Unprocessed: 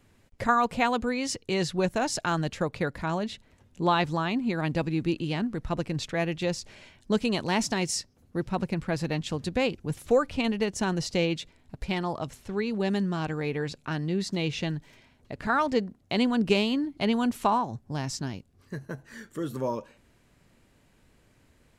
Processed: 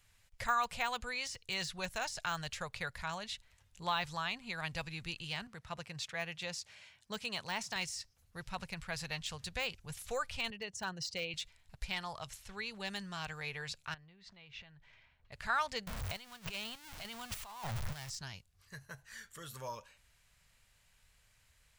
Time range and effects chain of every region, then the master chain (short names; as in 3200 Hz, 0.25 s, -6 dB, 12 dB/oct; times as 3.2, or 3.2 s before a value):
5.47–7.76 HPF 120 Hz + high shelf 2400 Hz -5 dB
10.5–11.34 formant sharpening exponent 1.5 + HPF 110 Hz + hard clip -17 dBFS
13.94–15.32 LPF 2400 Hz + compressor 12:1, threshold -40 dBFS
15.87–18.1 zero-crossing step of -26.5 dBFS + negative-ratio compressor -28 dBFS + chopper 1.7 Hz, depth 60%
whole clip: de-esser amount 90%; passive tone stack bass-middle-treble 10-0-10; gain +1 dB